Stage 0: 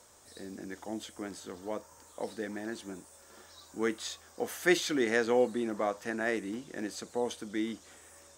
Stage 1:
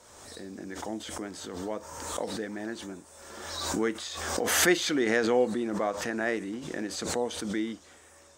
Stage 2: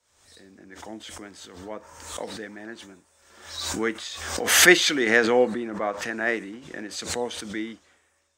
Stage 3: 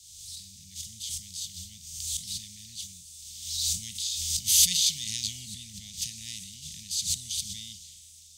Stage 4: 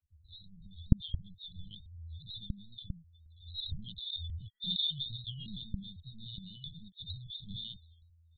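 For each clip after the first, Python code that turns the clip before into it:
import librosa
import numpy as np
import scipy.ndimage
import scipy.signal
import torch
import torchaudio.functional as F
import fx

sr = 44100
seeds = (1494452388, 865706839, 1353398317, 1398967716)

y1 = fx.high_shelf(x, sr, hz=10000.0, db=-10.0)
y1 = fx.pre_swell(y1, sr, db_per_s=37.0)
y1 = F.gain(torch.from_numpy(y1), 1.5).numpy()
y2 = fx.peak_eq(y1, sr, hz=2200.0, db=6.5, octaves=1.8)
y2 = fx.band_widen(y2, sr, depth_pct=70)
y3 = fx.bin_compress(y2, sr, power=0.6)
y3 = scipy.signal.sosfilt(scipy.signal.cheby2(4, 50, [310.0, 1700.0], 'bandstop', fs=sr, output='sos'), y3)
y3 = F.gain(torch.from_numpy(y3), -1.5).numpy()
y4 = fx.spec_topn(y3, sr, count=16)
y4 = fx.lpc_vocoder(y4, sr, seeds[0], excitation='pitch_kept', order=8)
y4 = F.gain(torch.from_numpy(y4), 4.0).numpy()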